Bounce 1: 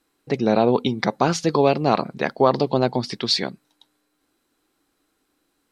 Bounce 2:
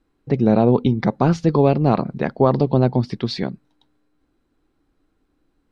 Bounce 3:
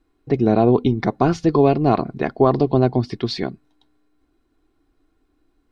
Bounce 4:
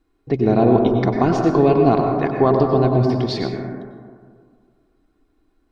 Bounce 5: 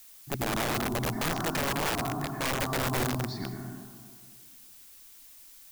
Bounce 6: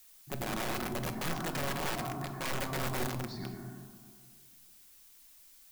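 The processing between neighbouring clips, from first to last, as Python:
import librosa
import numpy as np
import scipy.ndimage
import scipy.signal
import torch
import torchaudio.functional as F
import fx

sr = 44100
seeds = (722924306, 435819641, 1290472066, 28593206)

y1 = fx.riaa(x, sr, side='playback')
y1 = y1 * 10.0 ** (-2.0 / 20.0)
y2 = y1 + 0.44 * np.pad(y1, (int(2.8 * sr / 1000.0), 0))[:len(y1)]
y3 = fx.rev_plate(y2, sr, seeds[0], rt60_s=1.9, hf_ratio=0.25, predelay_ms=85, drr_db=2.0)
y3 = y3 * 10.0 ** (-1.0 / 20.0)
y4 = fx.fixed_phaser(y3, sr, hz=1200.0, stages=4)
y4 = fx.dmg_noise_colour(y4, sr, seeds[1], colour='blue', level_db=-44.0)
y4 = (np.mod(10.0 ** (15.5 / 20.0) * y4 + 1.0, 2.0) - 1.0) / 10.0 ** (15.5 / 20.0)
y4 = y4 * 10.0 ** (-8.0 / 20.0)
y5 = fx.room_shoebox(y4, sr, seeds[2], volume_m3=940.0, walls='furnished', distance_m=1.0)
y5 = y5 * 10.0 ** (-6.5 / 20.0)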